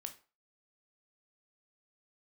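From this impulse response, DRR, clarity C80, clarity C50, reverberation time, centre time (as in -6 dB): 6.0 dB, 19.0 dB, 13.0 dB, 0.35 s, 8 ms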